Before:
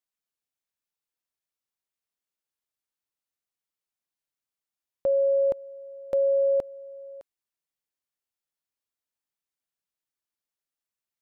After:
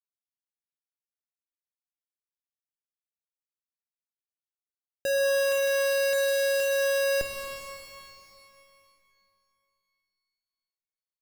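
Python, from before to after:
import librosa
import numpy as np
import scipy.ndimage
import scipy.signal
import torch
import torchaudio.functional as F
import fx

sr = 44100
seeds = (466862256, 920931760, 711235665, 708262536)

y = fx.schmitt(x, sr, flips_db=-48.0)
y = fx.rev_shimmer(y, sr, seeds[0], rt60_s=2.5, semitones=12, shimmer_db=-8, drr_db=4.5)
y = y * 10.0 ** (6.0 / 20.0)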